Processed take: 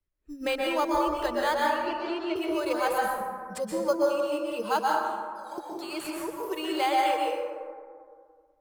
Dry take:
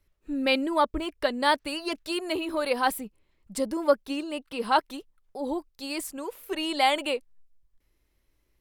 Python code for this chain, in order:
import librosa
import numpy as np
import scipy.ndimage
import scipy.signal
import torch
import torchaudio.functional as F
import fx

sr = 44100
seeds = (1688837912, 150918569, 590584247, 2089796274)

p1 = fx.noise_reduce_blind(x, sr, reduce_db=22)
p2 = fx.bessel_highpass(p1, sr, hz=1500.0, order=2, at=(4.79, 5.58))
p3 = fx.sample_hold(p2, sr, seeds[0], rate_hz=5600.0, jitter_pct=0)
p4 = p2 + F.gain(torch.from_numpy(p3), -7.0).numpy()
p5 = fx.air_absorb(p4, sr, metres=180.0, at=(1.58, 2.36))
p6 = fx.rev_plate(p5, sr, seeds[1], rt60_s=1.5, hf_ratio=0.4, predelay_ms=110, drr_db=-3.0)
p7 = fx.band_squash(p6, sr, depth_pct=40)
y = F.gain(torch.from_numpy(p7), -7.5).numpy()